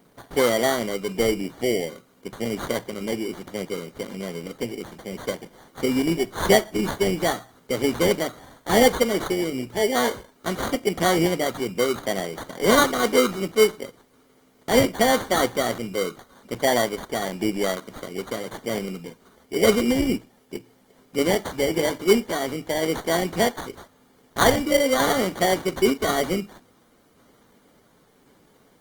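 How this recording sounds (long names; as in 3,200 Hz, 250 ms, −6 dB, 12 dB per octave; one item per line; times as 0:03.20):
aliases and images of a low sample rate 2,600 Hz, jitter 0%
tremolo saw down 0.92 Hz, depth 30%
a quantiser's noise floor 12 bits, dither triangular
Opus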